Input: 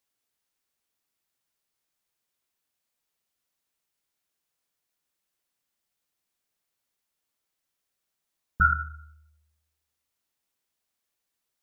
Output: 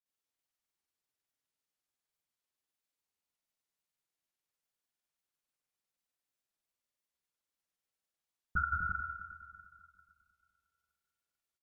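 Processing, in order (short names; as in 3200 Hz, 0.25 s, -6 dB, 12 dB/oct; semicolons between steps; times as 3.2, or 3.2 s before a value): multi-head echo 0.111 s, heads first and second, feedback 60%, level -9 dB; grains, pitch spread up and down by 0 st; gain -8.5 dB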